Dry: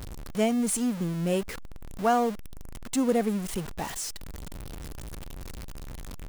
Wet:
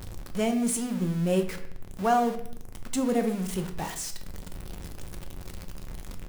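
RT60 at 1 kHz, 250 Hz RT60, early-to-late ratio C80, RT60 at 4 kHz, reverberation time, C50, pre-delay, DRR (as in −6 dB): 0.60 s, 0.80 s, 13.5 dB, 0.55 s, 0.65 s, 10.5 dB, 5 ms, 5.5 dB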